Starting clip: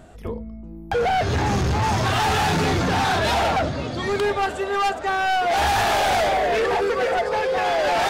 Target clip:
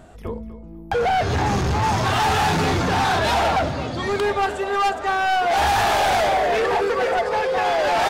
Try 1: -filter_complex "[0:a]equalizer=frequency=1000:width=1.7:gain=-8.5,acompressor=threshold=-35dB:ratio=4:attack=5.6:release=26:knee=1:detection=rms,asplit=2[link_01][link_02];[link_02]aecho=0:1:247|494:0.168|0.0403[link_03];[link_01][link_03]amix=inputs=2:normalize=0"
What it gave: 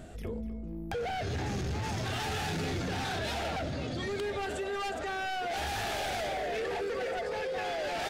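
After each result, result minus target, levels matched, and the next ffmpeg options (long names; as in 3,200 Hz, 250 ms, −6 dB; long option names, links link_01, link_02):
downward compressor: peak gain reduction +12.5 dB; 1,000 Hz band −3.0 dB
-filter_complex "[0:a]equalizer=frequency=1000:width=1.7:gain=-8.5,asplit=2[link_01][link_02];[link_02]aecho=0:1:247|494:0.168|0.0403[link_03];[link_01][link_03]amix=inputs=2:normalize=0"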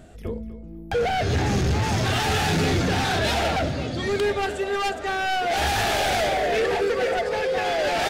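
1,000 Hz band −3.5 dB
-filter_complex "[0:a]equalizer=frequency=1000:width=1.7:gain=2.5,asplit=2[link_01][link_02];[link_02]aecho=0:1:247|494:0.168|0.0403[link_03];[link_01][link_03]amix=inputs=2:normalize=0"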